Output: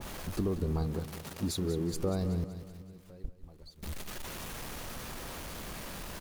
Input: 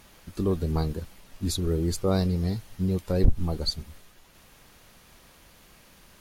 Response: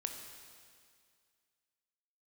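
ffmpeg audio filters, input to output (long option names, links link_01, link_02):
-filter_complex "[0:a]aeval=exprs='val(0)+0.5*0.0168*sgn(val(0))':channel_layout=same,asettb=1/sr,asplit=3[link_01][link_02][link_03];[link_01]atrim=end=0.864[link_04];[link_02]atrim=start=0.86:end=1.94,asetpts=PTS-STARTPTS,afade=type=in:duration=0.004:curve=qsin,afade=type=out:start_time=1.076:duration=0.004:curve=qsin,highpass=110[link_05];[link_03]atrim=start=1.936[link_06];[link_04][link_05]acrossfade=duration=0.004:curve1=hsin:curve2=qsin[link_07];[link_07][link_06]acrossfade=duration=0.004:curve1=qsin:curve2=hsin,acompressor=threshold=-29dB:ratio=4,asettb=1/sr,asplit=3[link_08][link_09][link_10];[link_08]atrim=end=2.444[link_11];[link_09]atrim=start=2.44:end=3.83,asetpts=PTS-STARTPTS,afade=type=in:duration=0.004:curve=qsin,afade=type=out:start_time=1.386:duration=0.004:curve=qsin,agate=range=-21dB:threshold=-25dB:ratio=16:detection=peak[link_12];[link_10]atrim=start=3.826[link_13];[link_11][link_12]acrossfade=duration=0.004:curve1=hsin:curve2=qsin[link_14];[link_14][link_13]acrossfade=duration=0.004:curve1=qsin:curve2=hsin,aecho=1:1:189|378|567|756|945:0.266|0.128|0.0613|0.0294|0.0141,adynamicequalizer=threshold=0.00316:dfrequency=1500:dqfactor=0.7:tfrequency=1500:tqfactor=0.7:attack=5:release=100:ratio=0.375:range=2.5:mode=cutabove:tftype=highshelf"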